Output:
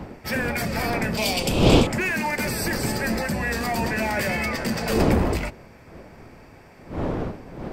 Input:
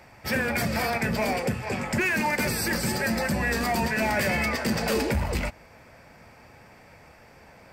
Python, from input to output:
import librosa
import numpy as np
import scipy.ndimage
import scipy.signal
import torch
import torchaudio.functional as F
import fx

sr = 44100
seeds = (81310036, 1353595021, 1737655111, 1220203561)

y = fx.dmg_wind(x, sr, seeds[0], corner_hz=420.0, level_db=-27.0)
y = fx.high_shelf_res(y, sr, hz=2400.0, db=9.5, q=3.0, at=(1.17, 1.87))